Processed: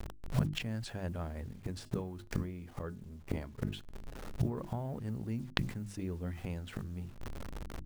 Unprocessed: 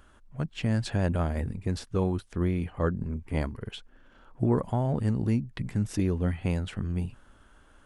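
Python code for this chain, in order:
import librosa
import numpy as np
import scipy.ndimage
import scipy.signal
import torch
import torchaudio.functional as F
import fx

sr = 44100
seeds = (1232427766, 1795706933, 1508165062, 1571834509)

y = fx.delta_hold(x, sr, step_db=-48.5)
y = fx.gate_flip(y, sr, shuts_db=-29.0, range_db=-25)
y = fx.hum_notches(y, sr, base_hz=50, count=7)
y = fx.comb_fb(y, sr, f0_hz=210.0, decay_s=0.32, harmonics='all', damping=0.0, mix_pct=40, at=(1.72, 4.57))
y = fx.sustainer(y, sr, db_per_s=93.0)
y = y * librosa.db_to_amplitude(13.5)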